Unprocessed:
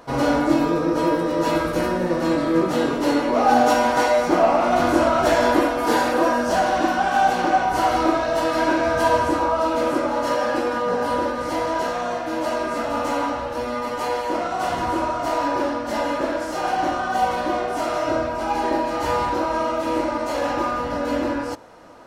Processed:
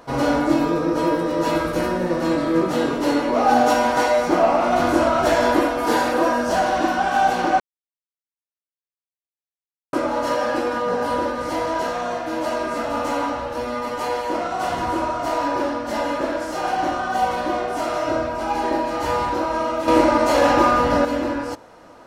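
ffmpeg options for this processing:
ffmpeg -i in.wav -filter_complex "[0:a]asplit=5[link_01][link_02][link_03][link_04][link_05];[link_01]atrim=end=7.6,asetpts=PTS-STARTPTS,afade=type=out:start_time=7.596:duration=0.004:curve=hsin[link_06];[link_02]atrim=start=7.6:end=9.93,asetpts=PTS-STARTPTS,volume=0[link_07];[link_03]atrim=start=9.93:end=19.882,asetpts=PTS-STARTPTS,afade=type=in:duration=0.004:curve=hsin[link_08];[link_04]atrim=start=19.878:end=21.052,asetpts=PTS-STARTPTS,volume=7.5dB[link_09];[link_05]atrim=start=21.048[link_10];[link_06][link_07][link_08]concat=n=3:v=0:a=1[link_11];[link_11][link_09]acrossfade=duration=0.004:curve1=hsin:curve2=hsin[link_12];[link_12][link_10]acrossfade=duration=0.004:curve1=hsin:curve2=hsin" out.wav

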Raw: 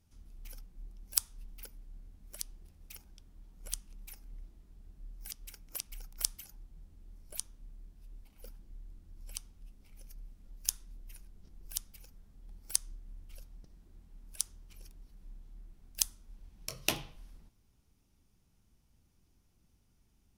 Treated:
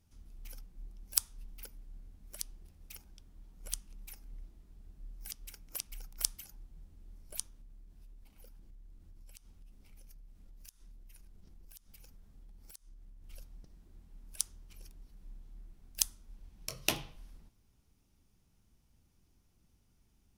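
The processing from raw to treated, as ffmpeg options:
ffmpeg -i in.wav -filter_complex "[0:a]asettb=1/sr,asplit=3[link_01][link_02][link_03];[link_01]atrim=end=7.484[link_04];[link_02]atrim=start=7.48:end=13.24,asetpts=PTS-STARTPTS,afade=type=in:duration=0.004:curve=qsin,afade=type=out:start_time=5.756:duration=0.004:curve=qsin,acompressor=threshold=-50dB:ratio=12:attack=3.2:release=140:knee=1:detection=peak[link_05];[link_03]atrim=start=13.236[link_06];[link_04][link_05]acrossfade=duration=0.004:curve1=hsin:curve2=qsin[link_07];[link_07][link_06]acrossfade=duration=0.004:curve1=qsin:curve2=hsin" out.wav

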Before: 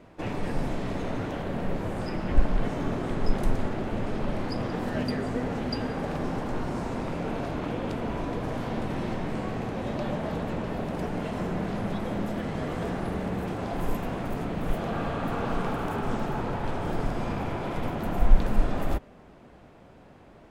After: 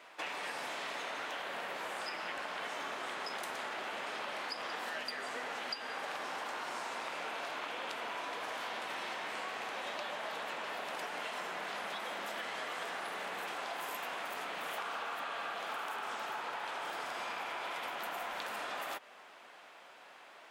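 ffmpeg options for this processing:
ffmpeg -i in.wav -filter_complex "[0:a]asplit=3[link_01][link_02][link_03];[link_01]atrim=end=14.782[link_04];[link_02]atrim=start=14.778:end=15.692,asetpts=PTS-STARTPTS,areverse[link_05];[link_03]atrim=start=15.688[link_06];[link_04][link_05]acrossfade=duration=0.004:curve1=hsin:curve2=hsin[link_07];[link_07][link_06]acrossfade=duration=0.004:curve1=hsin:curve2=hsin,highpass=1100,equalizer=frequency=3200:width_type=o:width=0.77:gain=2.5,acompressor=threshold=-43dB:ratio=6,volume=6dB" out.wav

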